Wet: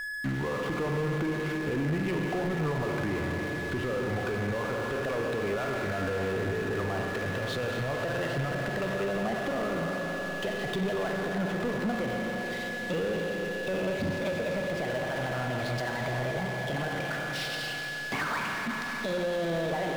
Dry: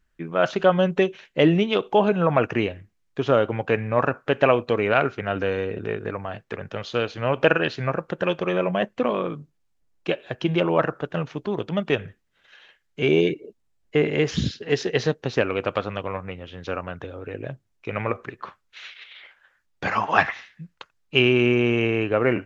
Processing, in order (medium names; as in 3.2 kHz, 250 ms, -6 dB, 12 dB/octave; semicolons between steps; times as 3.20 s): gliding tape speed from 79% -> 146%; compression, threshold -28 dBFS, peak gain reduction 15.5 dB; low-pass that closes with the level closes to 2.1 kHz, closed at -29.5 dBFS; reverberation RT60 4.2 s, pre-delay 32 ms, DRR 3.5 dB; peak limiter -23.5 dBFS, peak gain reduction 9 dB; whistle 1.7 kHz -42 dBFS; power-law waveshaper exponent 0.5; bass shelf 220 Hz +3 dB; trim -2 dB